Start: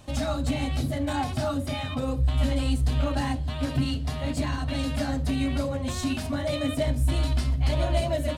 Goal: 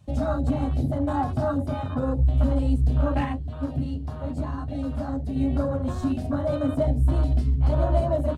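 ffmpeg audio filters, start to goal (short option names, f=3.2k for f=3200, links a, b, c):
-filter_complex "[0:a]afwtdn=0.0224,asplit=3[a][b][c];[a]afade=t=out:st=3.24:d=0.02[d];[b]flanger=delay=9.5:depth=3.4:regen=48:speed=1.7:shape=triangular,afade=t=in:st=3.24:d=0.02,afade=t=out:st=5.35:d=0.02[e];[c]afade=t=in:st=5.35:d=0.02[f];[d][e][f]amix=inputs=3:normalize=0,volume=3dB"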